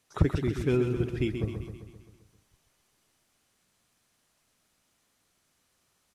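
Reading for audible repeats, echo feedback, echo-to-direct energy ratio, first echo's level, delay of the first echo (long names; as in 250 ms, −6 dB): 6, 57%, −6.0 dB, −7.5 dB, 131 ms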